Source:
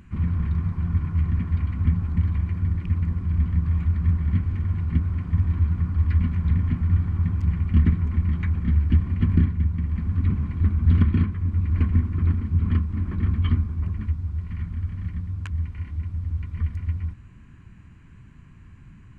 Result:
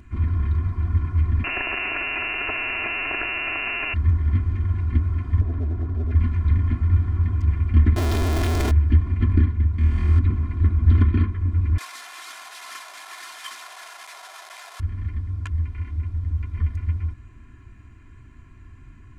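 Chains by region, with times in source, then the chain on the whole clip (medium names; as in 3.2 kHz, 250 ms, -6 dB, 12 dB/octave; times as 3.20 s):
1.44–3.94 s: one-bit comparator + tilt EQ +2.5 dB/octave + frequency inversion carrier 2.8 kHz
5.41–6.15 s: treble shelf 2.4 kHz -11.5 dB + overload inside the chain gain 24 dB
7.96–8.71 s: one-bit comparator + loudspeaker Doppler distortion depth 0.2 ms
9.78–10.19 s: treble shelf 2.8 kHz +10 dB + flutter echo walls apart 4.3 m, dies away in 1.2 s + loudspeaker Doppler distortion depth 0.14 ms
11.78–14.80 s: one-bit delta coder 64 kbps, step -30.5 dBFS + high-pass 740 Hz 24 dB/octave
whole clip: band-stop 2.8 kHz, Q 25; comb 2.9 ms, depth 77%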